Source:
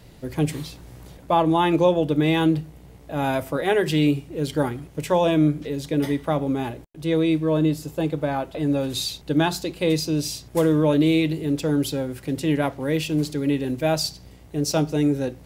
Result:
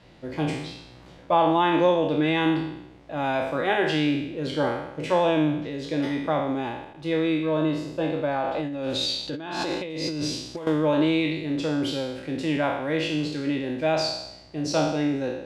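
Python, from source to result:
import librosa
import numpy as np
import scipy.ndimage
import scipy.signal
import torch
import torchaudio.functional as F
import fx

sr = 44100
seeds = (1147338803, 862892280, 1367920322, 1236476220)

y = fx.spec_trails(x, sr, decay_s=0.87)
y = scipy.signal.sosfilt(scipy.signal.butter(2, 4000.0, 'lowpass', fs=sr, output='sos'), y)
y = fx.low_shelf(y, sr, hz=170.0, db=-11.0)
y = fx.notch(y, sr, hz=430.0, q=12.0)
y = fx.over_compress(y, sr, threshold_db=-28.0, ratio=-1.0, at=(8.44, 10.67))
y = y * librosa.db_to_amplitude(-1.5)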